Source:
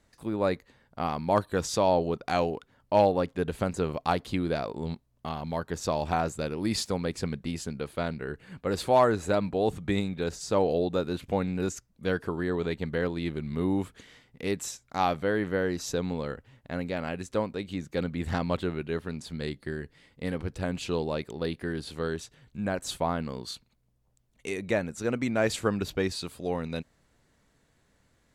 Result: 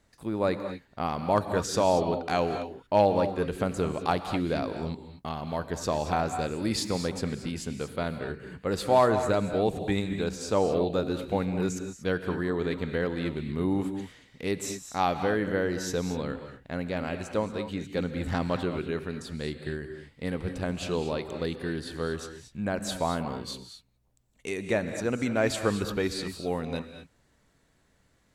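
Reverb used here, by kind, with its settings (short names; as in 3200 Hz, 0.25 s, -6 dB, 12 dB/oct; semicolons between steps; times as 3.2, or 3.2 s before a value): non-linear reverb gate 0.26 s rising, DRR 8 dB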